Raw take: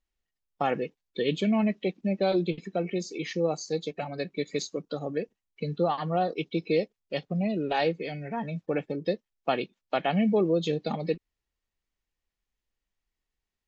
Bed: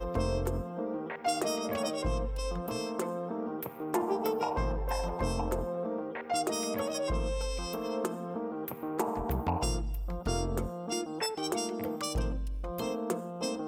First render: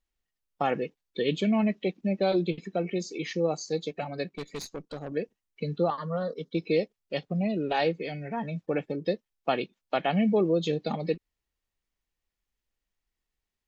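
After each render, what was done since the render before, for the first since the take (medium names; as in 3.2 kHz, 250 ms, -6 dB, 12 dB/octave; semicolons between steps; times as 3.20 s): 4.29–5.12 s: valve stage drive 31 dB, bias 0.7; 5.90–6.55 s: static phaser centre 510 Hz, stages 8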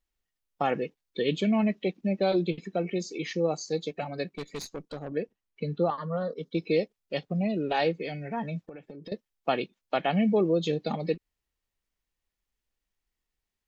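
4.96–6.43 s: treble shelf 5.4 kHz -10.5 dB; 8.65–9.12 s: compression 16:1, threshold -39 dBFS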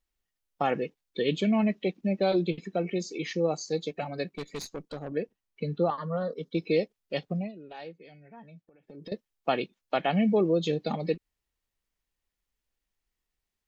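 7.32–9.00 s: dip -16.5 dB, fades 0.20 s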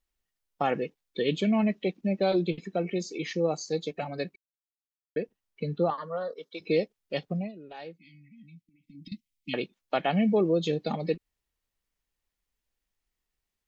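4.36–5.16 s: mute; 5.93–6.60 s: high-pass 240 Hz -> 730 Hz; 7.97–9.54 s: brick-wall FIR band-stop 320–1900 Hz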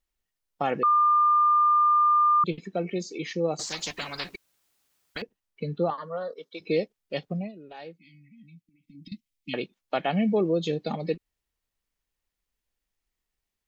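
0.83–2.44 s: bleep 1.2 kHz -17 dBFS; 3.59–5.22 s: spectrum-flattening compressor 10:1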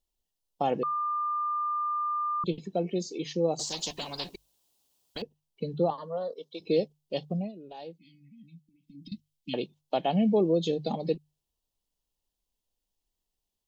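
high-order bell 1.7 kHz -12.5 dB 1.2 oct; hum notches 50/100/150 Hz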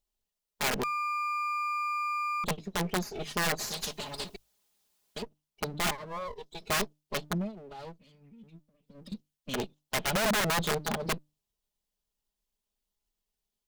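comb filter that takes the minimum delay 4.8 ms; integer overflow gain 22.5 dB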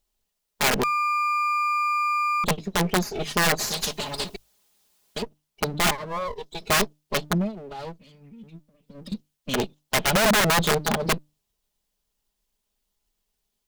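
trim +8 dB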